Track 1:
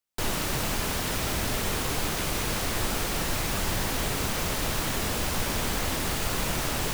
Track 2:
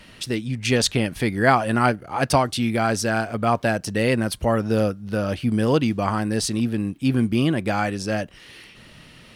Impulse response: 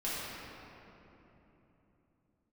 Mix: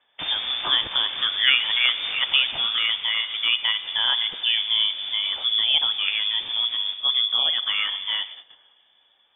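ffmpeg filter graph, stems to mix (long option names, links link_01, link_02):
-filter_complex "[0:a]volume=-2.5dB,afade=type=out:start_time=2.53:duration=0.28:silence=0.316228,asplit=2[link_01][link_02];[link_02]volume=-15.5dB[link_03];[1:a]volume=-3dB,asplit=3[link_04][link_05][link_06];[link_05]volume=-17dB[link_07];[link_06]apad=whole_len=305856[link_08];[link_01][link_08]sidechaincompress=threshold=-27dB:ratio=8:attack=16:release=310[link_09];[2:a]atrim=start_sample=2205[link_10];[link_03][link_07]amix=inputs=2:normalize=0[link_11];[link_11][link_10]afir=irnorm=-1:irlink=0[link_12];[link_09][link_04][link_12]amix=inputs=3:normalize=0,agate=range=-17dB:threshold=-35dB:ratio=16:detection=peak,lowpass=frequency=3100:width_type=q:width=0.5098,lowpass=frequency=3100:width_type=q:width=0.6013,lowpass=frequency=3100:width_type=q:width=0.9,lowpass=frequency=3100:width_type=q:width=2.563,afreqshift=-3600"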